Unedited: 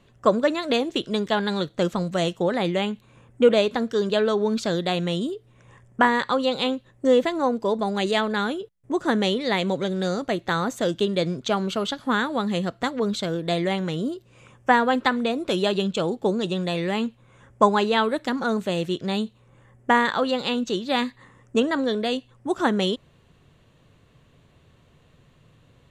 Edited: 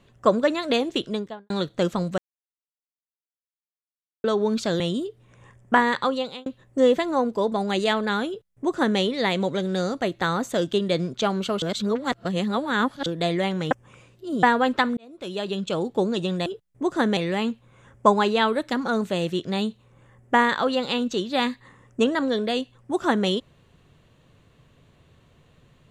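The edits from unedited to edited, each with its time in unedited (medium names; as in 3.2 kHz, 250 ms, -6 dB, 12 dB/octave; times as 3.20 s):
0.98–1.50 s: studio fade out
2.18–4.24 s: mute
4.80–5.07 s: delete
6.31–6.73 s: fade out
8.55–9.26 s: copy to 16.73 s
11.89–13.33 s: reverse
13.98–14.70 s: reverse
15.24–16.17 s: fade in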